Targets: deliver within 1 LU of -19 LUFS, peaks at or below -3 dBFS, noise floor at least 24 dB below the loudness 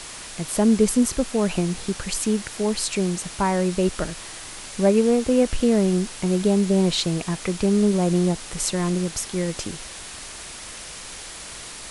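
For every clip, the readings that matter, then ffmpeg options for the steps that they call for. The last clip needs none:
noise floor -38 dBFS; noise floor target -46 dBFS; loudness -22.0 LUFS; peak -6.5 dBFS; loudness target -19.0 LUFS
-> -af "afftdn=nr=8:nf=-38"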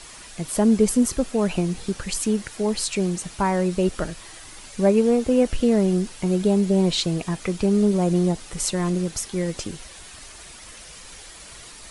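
noise floor -43 dBFS; noise floor target -47 dBFS
-> -af "afftdn=nr=6:nf=-43"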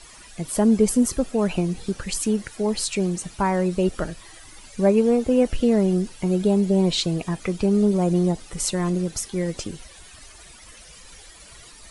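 noise floor -46 dBFS; noise floor target -47 dBFS
-> -af "afftdn=nr=6:nf=-46"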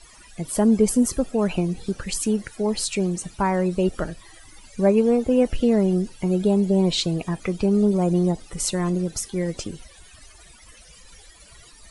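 noise floor -49 dBFS; loudness -22.5 LUFS; peak -7.0 dBFS; loudness target -19.0 LUFS
-> -af "volume=3.5dB"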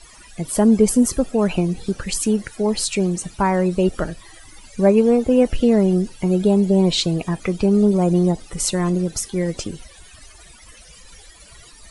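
loudness -19.0 LUFS; peak -3.5 dBFS; noise floor -45 dBFS

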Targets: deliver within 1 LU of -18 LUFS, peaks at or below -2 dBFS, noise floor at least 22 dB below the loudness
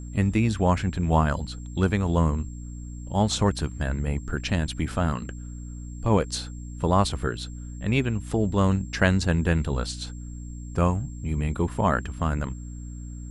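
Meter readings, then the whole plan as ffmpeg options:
hum 60 Hz; harmonics up to 300 Hz; hum level -35 dBFS; steady tone 7500 Hz; tone level -51 dBFS; loudness -25.5 LUFS; peak -5.5 dBFS; loudness target -18.0 LUFS
-> -af "bandreject=f=60:t=h:w=4,bandreject=f=120:t=h:w=4,bandreject=f=180:t=h:w=4,bandreject=f=240:t=h:w=4,bandreject=f=300:t=h:w=4"
-af "bandreject=f=7.5k:w=30"
-af "volume=7.5dB,alimiter=limit=-2dB:level=0:latency=1"

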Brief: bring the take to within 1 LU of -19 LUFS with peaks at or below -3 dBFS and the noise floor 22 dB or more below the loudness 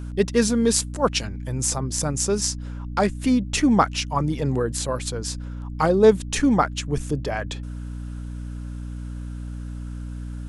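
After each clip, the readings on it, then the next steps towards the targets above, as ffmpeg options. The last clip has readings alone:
hum 60 Hz; harmonics up to 300 Hz; hum level -29 dBFS; loudness -22.5 LUFS; peak -2.0 dBFS; loudness target -19.0 LUFS
-> -af "bandreject=f=60:t=h:w=6,bandreject=f=120:t=h:w=6,bandreject=f=180:t=h:w=6,bandreject=f=240:t=h:w=6,bandreject=f=300:t=h:w=6"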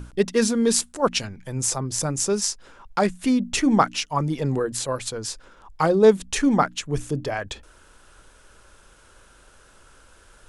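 hum none; loudness -23.0 LUFS; peak -2.5 dBFS; loudness target -19.0 LUFS
-> -af "volume=4dB,alimiter=limit=-3dB:level=0:latency=1"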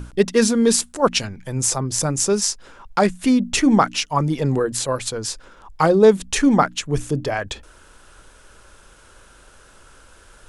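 loudness -19.0 LUFS; peak -3.0 dBFS; noise floor -50 dBFS

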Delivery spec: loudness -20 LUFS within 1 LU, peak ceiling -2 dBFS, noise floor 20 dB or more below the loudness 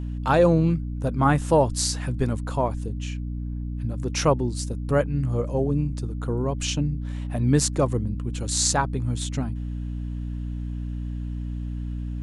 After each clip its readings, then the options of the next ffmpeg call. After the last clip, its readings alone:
hum 60 Hz; harmonics up to 300 Hz; hum level -27 dBFS; loudness -25.5 LUFS; peak -4.0 dBFS; loudness target -20.0 LUFS
-> -af "bandreject=f=60:t=h:w=6,bandreject=f=120:t=h:w=6,bandreject=f=180:t=h:w=6,bandreject=f=240:t=h:w=6,bandreject=f=300:t=h:w=6"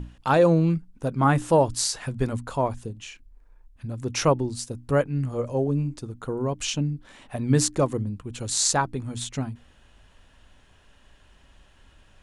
hum none; loudness -25.0 LUFS; peak -4.5 dBFS; loudness target -20.0 LUFS
-> -af "volume=5dB,alimiter=limit=-2dB:level=0:latency=1"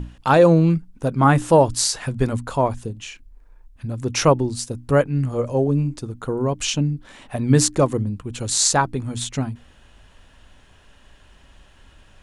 loudness -20.0 LUFS; peak -2.0 dBFS; noise floor -52 dBFS

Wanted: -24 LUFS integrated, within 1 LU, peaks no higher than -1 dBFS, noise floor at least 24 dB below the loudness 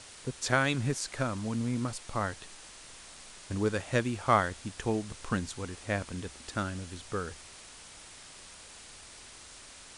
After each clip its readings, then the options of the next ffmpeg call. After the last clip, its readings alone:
noise floor -50 dBFS; noise floor target -57 dBFS; loudness -32.5 LUFS; peak -10.0 dBFS; loudness target -24.0 LUFS
-> -af "afftdn=nr=7:nf=-50"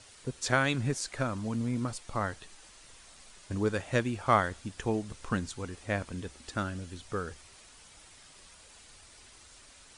noise floor -55 dBFS; noise floor target -57 dBFS
-> -af "afftdn=nr=6:nf=-55"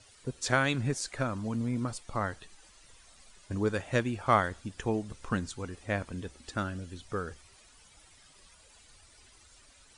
noise floor -59 dBFS; loudness -32.5 LUFS; peak -10.0 dBFS; loudness target -24.0 LUFS
-> -af "volume=8.5dB"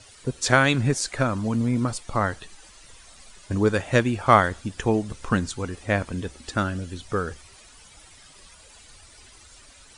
loudness -24.0 LUFS; peak -1.5 dBFS; noise floor -50 dBFS

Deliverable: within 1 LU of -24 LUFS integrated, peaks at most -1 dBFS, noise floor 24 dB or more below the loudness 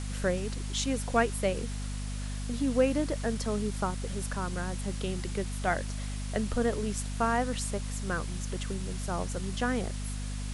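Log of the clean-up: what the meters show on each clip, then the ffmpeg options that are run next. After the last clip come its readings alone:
hum 50 Hz; harmonics up to 250 Hz; hum level -33 dBFS; noise floor -35 dBFS; noise floor target -56 dBFS; loudness -32.0 LUFS; peak -12.5 dBFS; loudness target -24.0 LUFS
-> -af "bandreject=f=50:t=h:w=6,bandreject=f=100:t=h:w=6,bandreject=f=150:t=h:w=6,bandreject=f=200:t=h:w=6,bandreject=f=250:t=h:w=6"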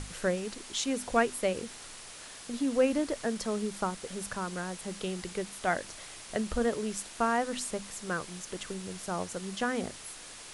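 hum none; noise floor -47 dBFS; noise floor target -57 dBFS
-> -af "afftdn=nr=10:nf=-47"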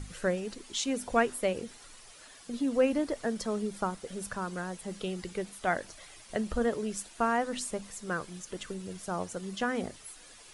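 noise floor -53 dBFS; noise floor target -57 dBFS
-> -af "afftdn=nr=6:nf=-53"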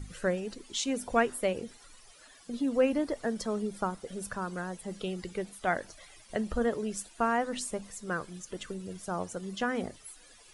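noise floor -56 dBFS; noise floor target -57 dBFS
-> -af "afftdn=nr=6:nf=-56"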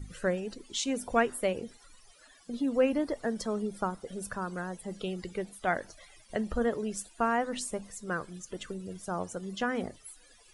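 noise floor -59 dBFS; loudness -33.0 LUFS; peak -13.0 dBFS; loudness target -24.0 LUFS
-> -af "volume=9dB"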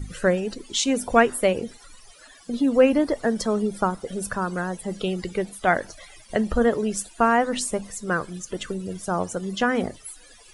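loudness -24.0 LUFS; peak -4.0 dBFS; noise floor -50 dBFS

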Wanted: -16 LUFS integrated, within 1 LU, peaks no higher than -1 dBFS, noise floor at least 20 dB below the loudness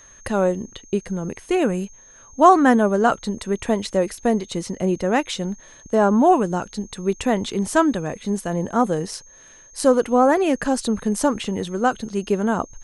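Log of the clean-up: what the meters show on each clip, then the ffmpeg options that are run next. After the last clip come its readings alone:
steady tone 6400 Hz; tone level -46 dBFS; loudness -21.0 LUFS; peak -2.0 dBFS; loudness target -16.0 LUFS
-> -af "bandreject=f=6.4k:w=30"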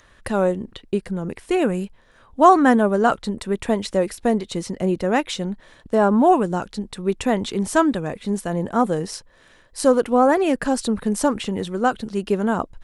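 steady tone none; loudness -21.0 LUFS; peak -2.0 dBFS; loudness target -16.0 LUFS
-> -af "volume=5dB,alimiter=limit=-1dB:level=0:latency=1"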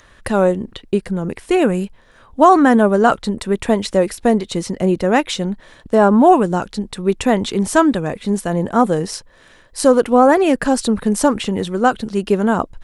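loudness -16.5 LUFS; peak -1.0 dBFS; noise floor -49 dBFS

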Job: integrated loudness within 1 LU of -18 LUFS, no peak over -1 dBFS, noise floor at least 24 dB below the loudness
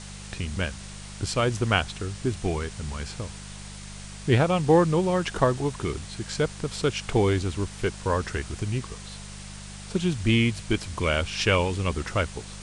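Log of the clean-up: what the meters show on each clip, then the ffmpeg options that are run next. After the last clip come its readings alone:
hum 50 Hz; harmonics up to 200 Hz; hum level -39 dBFS; noise floor -41 dBFS; noise floor target -50 dBFS; loudness -26.0 LUFS; peak -6.0 dBFS; loudness target -18.0 LUFS
-> -af "bandreject=f=50:t=h:w=4,bandreject=f=100:t=h:w=4,bandreject=f=150:t=h:w=4,bandreject=f=200:t=h:w=4"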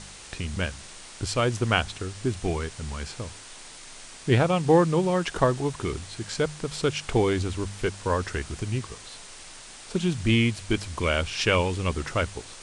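hum none; noise floor -45 dBFS; noise floor target -51 dBFS
-> -af "afftdn=nr=6:nf=-45"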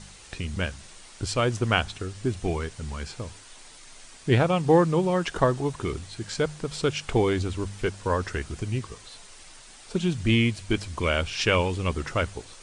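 noise floor -48 dBFS; noise floor target -51 dBFS
-> -af "afftdn=nr=6:nf=-48"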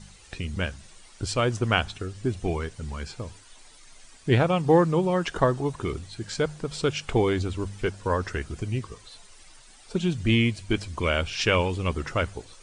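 noise floor -51 dBFS; loudness -26.5 LUFS; peak -5.5 dBFS; loudness target -18.0 LUFS
-> -af "volume=8.5dB,alimiter=limit=-1dB:level=0:latency=1"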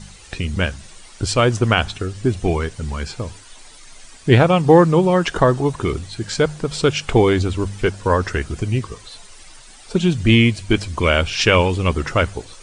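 loudness -18.0 LUFS; peak -1.0 dBFS; noise floor -43 dBFS

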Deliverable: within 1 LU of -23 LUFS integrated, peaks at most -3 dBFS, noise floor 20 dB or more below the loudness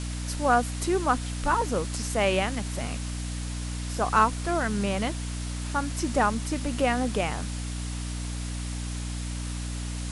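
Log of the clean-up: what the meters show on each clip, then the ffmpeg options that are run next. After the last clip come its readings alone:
hum 60 Hz; harmonics up to 300 Hz; hum level -30 dBFS; noise floor -33 dBFS; noise floor target -48 dBFS; loudness -28.0 LUFS; peak -8.5 dBFS; loudness target -23.0 LUFS
-> -af "bandreject=f=60:t=h:w=4,bandreject=f=120:t=h:w=4,bandreject=f=180:t=h:w=4,bandreject=f=240:t=h:w=4,bandreject=f=300:t=h:w=4"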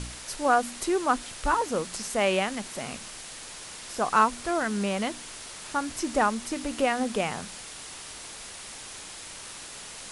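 hum none; noise floor -42 dBFS; noise floor target -49 dBFS
-> -af "afftdn=nr=7:nf=-42"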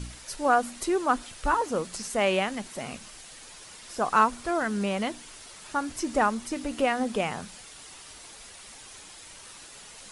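noise floor -47 dBFS; noise floor target -48 dBFS
-> -af "afftdn=nr=6:nf=-47"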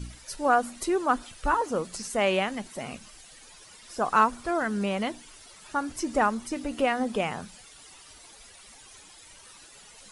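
noise floor -51 dBFS; loudness -27.5 LUFS; peak -9.0 dBFS; loudness target -23.0 LUFS
-> -af "volume=4.5dB"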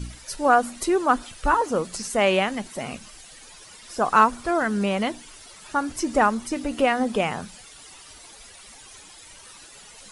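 loudness -23.0 LUFS; peak -4.5 dBFS; noise floor -47 dBFS

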